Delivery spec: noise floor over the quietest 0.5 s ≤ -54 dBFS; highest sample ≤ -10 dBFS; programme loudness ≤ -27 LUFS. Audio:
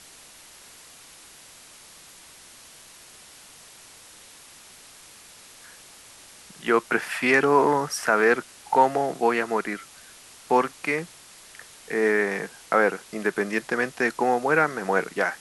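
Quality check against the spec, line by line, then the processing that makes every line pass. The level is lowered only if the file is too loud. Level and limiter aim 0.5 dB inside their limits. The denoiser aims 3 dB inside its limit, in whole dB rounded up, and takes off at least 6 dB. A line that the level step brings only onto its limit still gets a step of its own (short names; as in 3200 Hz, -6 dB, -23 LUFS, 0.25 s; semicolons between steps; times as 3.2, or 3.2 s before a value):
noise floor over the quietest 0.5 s -49 dBFS: fail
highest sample -6.0 dBFS: fail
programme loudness -23.5 LUFS: fail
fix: denoiser 6 dB, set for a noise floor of -49 dBFS; gain -4 dB; limiter -10.5 dBFS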